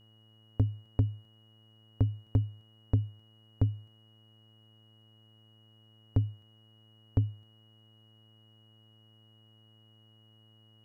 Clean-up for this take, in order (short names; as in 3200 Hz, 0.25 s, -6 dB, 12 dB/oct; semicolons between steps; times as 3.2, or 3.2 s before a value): de-hum 109.3 Hz, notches 19; notch 2900 Hz, Q 30